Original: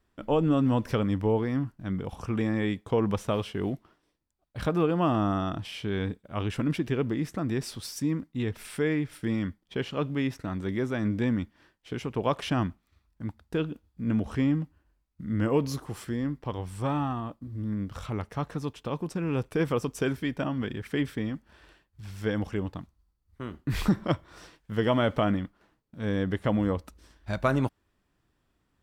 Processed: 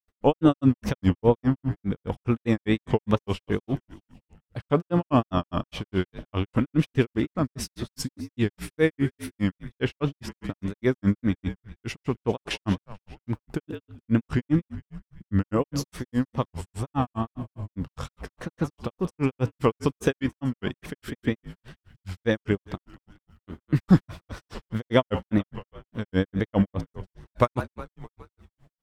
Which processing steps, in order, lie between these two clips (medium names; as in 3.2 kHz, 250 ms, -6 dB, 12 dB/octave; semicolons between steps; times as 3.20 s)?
frequency-shifting echo 194 ms, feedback 52%, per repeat -56 Hz, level -15 dB; wow and flutter 120 cents; granulator 132 ms, grains 4.9 per s, pitch spread up and down by 0 st; trim +8.5 dB